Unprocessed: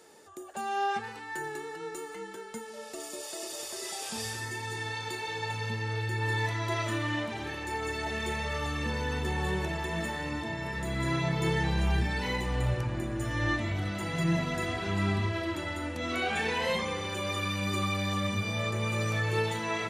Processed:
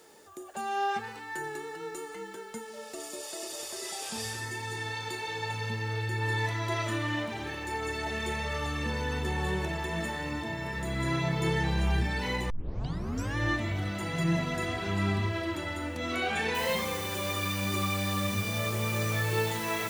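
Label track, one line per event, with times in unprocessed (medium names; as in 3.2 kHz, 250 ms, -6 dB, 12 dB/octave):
12.500000	12.500000	tape start 0.86 s
16.550000	16.550000	noise floor step -68 dB -42 dB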